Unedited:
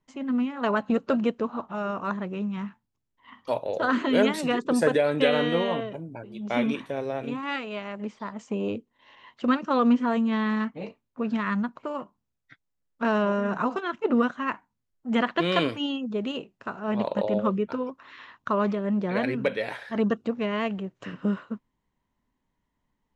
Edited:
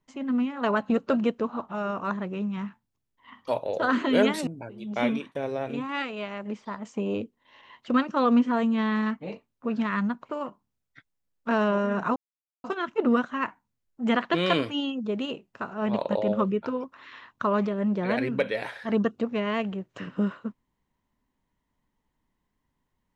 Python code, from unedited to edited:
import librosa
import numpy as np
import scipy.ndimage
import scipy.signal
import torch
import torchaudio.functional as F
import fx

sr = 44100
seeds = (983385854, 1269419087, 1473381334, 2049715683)

y = fx.edit(x, sr, fx.cut(start_s=4.47, length_s=1.54),
    fx.fade_out_to(start_s=6.61, length_s=0.28, floor_db=-22.5),
    fx.insert_silence(at_s=13.7, length_s=0.48), tone=tone)